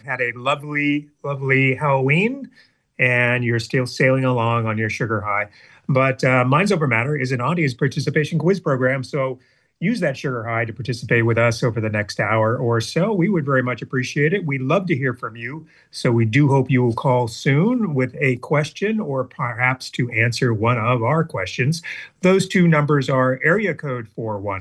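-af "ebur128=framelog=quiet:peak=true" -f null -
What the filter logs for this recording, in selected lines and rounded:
Integrated loudness:
  I:         -19.4 LUFS
  Threshold: -29.7 LUFS
Loudness range:
  LRA:         2.5 LU
  Threshold: -39.6 LUFS
  LRA low:   -21.0 LUFS
  LRA high:  -18.5 LUFS
True peak:
  Peak:       -1.5 dBFS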